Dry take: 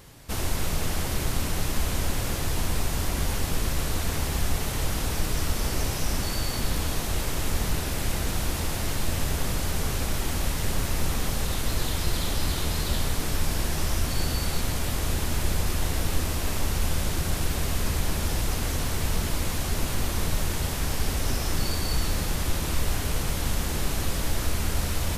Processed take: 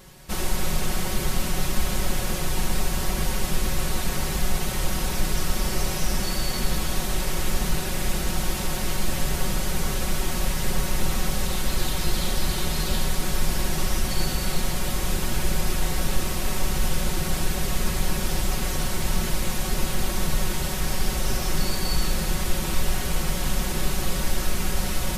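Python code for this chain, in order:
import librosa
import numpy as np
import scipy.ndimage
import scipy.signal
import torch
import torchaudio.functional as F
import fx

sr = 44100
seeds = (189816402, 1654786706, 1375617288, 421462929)

y = x + 0.77 * np.pad(x, (int(5.4 * sr / 1000.0), 0))[:len(x)]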